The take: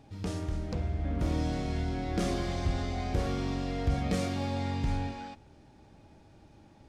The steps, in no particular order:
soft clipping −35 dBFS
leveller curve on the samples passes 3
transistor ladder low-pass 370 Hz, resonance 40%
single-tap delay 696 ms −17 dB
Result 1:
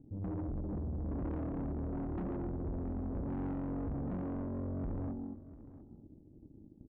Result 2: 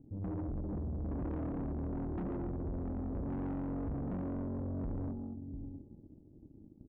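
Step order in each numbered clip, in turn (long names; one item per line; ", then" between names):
leveller curve on the samples, then transistor ladder low-pass, then soft clipping, then single-tap delay
single-tap delay, then leveller curve on the samples, then transistor ladder low-pass, then soft clipping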